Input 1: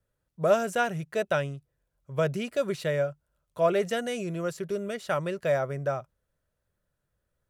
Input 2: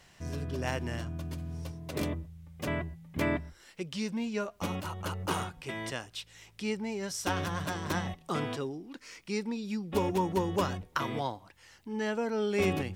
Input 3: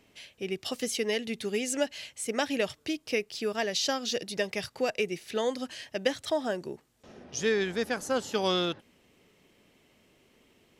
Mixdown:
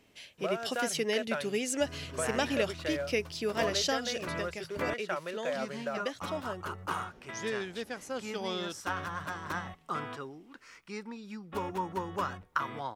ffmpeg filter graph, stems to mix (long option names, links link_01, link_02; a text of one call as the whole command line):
ffmpeg -i stem1.wav -i stem2.wav -i stem3.wav -filter_complex "[0:a]acompressor=threshold=-27dB:ratio=6,acrusher=bits=5:mode=log:mix=0:aa=0.000001,bandpass=frequency=1500:width_type=q:width=0.56:csg=0,volume=-0.5dB[link_01];[1:a]equalizer=frequency=1300:width_type=o:width=1.2:gain=12,adelay=1600,volume=-9dB,asplit=3[link_02][link_03][link_04];[link_02]atrim=end=4.94,asetpts=PTS-STARTPTS,afade=type=out:start_time=4.936:duration=0.004:curve=hsin[link_05];[link_03]atrim=start=4.94:end=5.5,asetpts=PTS-STARTPTS,volume=0[link_06];[link_04]atrim=start=5.5,asetpts=PTS-STARTPTS,afade=type=in:duration=0.004:curve=hsin[link_07];[link_05][link_06][link_07]concat=n=3:v=0:a=1[link_08];[2:a]volume=-1.5dB,afade=type=out:start_time=3.98:duration=0.27:silence=0.446684[link_09];[link_01][link_08][link_09]amix=inputs=3:normalize=0" out.wav